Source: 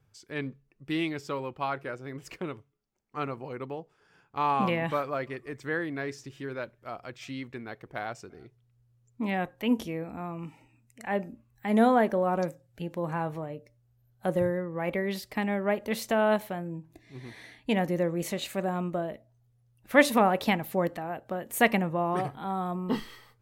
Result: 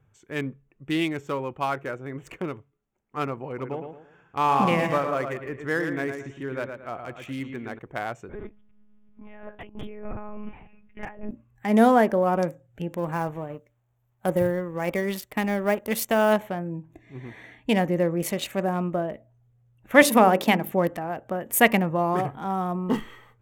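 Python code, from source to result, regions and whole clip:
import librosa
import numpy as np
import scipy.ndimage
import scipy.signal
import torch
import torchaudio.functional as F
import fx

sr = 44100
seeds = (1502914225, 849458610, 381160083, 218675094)

y = fx.chain(x, sr, fx.lowpass(hz=8500.0, slope=12),
    fx.echo_feedback(ms=112, feedback_pct=33, wet_db=-6.5), at=(3.47, 7.79))
y = fx.chain(y, sr, fx.over_compress(threshold_db=-42.0, ratio=-1.0),
    fx.lpc_monotone(seeds[0], pitch_hz=210.0, order=10), at=(8.29, 11.31))
y = fx.chain(y, sr, fx.law_mismatch(coded='A'),
    fx.high_shelf(hz=7000.0, db=6.5), at=(12.97, 16.33))
y = fx.chain(y, sr, fx.highpass(hz=200.0, slope=12),
    fx.low_shelf(hz=420.0, db=5.5),
    fx.hum_notches(base_hz=50, count=9), at=(20.02, 20.72))
y = fx.wiener(y, sr, points=9)
y = fx.high_shelf(y, sr, hz=6200.0, db=8.5)
y = fx.notch(y, sr, hz=4000.0, q=13.0)
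y = y * librosa.db_to_amplitude(4.5)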